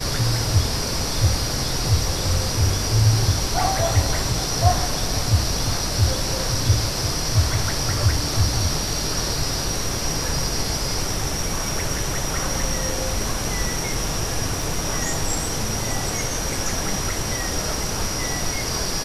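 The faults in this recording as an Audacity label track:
14.620000	14.620000	dropout 2.2 ms

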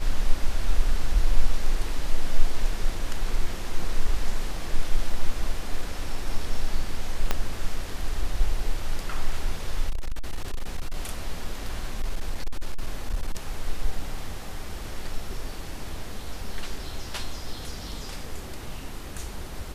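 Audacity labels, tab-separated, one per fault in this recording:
7.310000	7.310000	pop -8 dBFS
9.890000	10.940000	clipped -23 dBFS
12.000000	13.350000	clipped -20.5 dBFS

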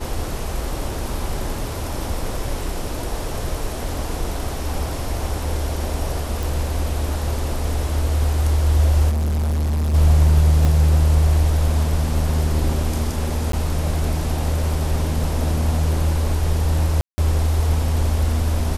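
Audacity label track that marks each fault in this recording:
6.430000	6.430000	pop
9.090000	9.950000	clipped -18 dBFS
10.650000	10.650000	dropout 2 ms
13.520000	13.530000	dropout 13 ms
17.010000	17.180000	dropout 170 ms

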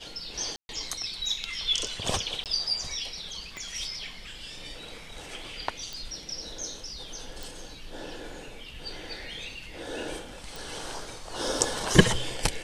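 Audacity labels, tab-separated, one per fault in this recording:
0.560000	0.690000	dropout 131 ms
2.440000	2.460000	dropout 18 ms
3.570000	3.570000	pop -24 dBFS
5.930000	5.930000	pop
7.430000	7.430000	pop
10.560000	10.560000	pop

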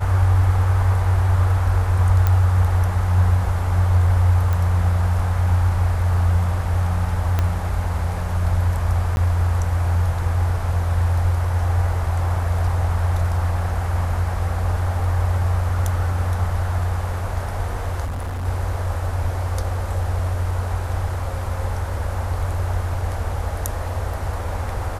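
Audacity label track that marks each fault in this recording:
2.270000	2.270000	pop -7 dBFS
4.530000	4.530000	pop
7.390000	7.390000	pop -8 dBFS
9.160000	9.170000	dropout 11 ms
18.040000	18.460000	clipped -23.5 dBFS

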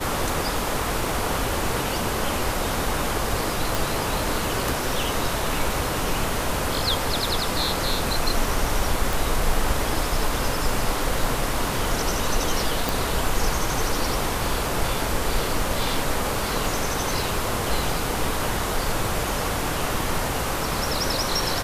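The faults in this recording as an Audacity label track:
3.750000	3.750000	pop
9.130000	9.130000	pop
12.890000	12.890000	pop

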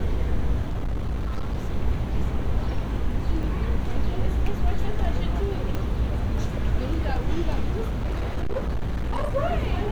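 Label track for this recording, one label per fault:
0.640000	1.570000	clipped -22.5 dBFS
3.430000	3.430000	dropout 2.5 ms
5.750000	5.750000	pop -16 dBFS
7.890000	9.370000	clipped -22 dBFS

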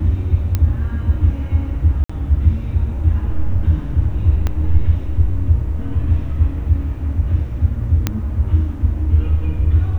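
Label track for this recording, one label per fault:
0.550000	0.550000	pop -6 dBFS
2.040000	2.100000	dropout 55 ms
4.470000	4.470000	pop -8 dBFS
8.070000	8.070000	pop -3 dBFS

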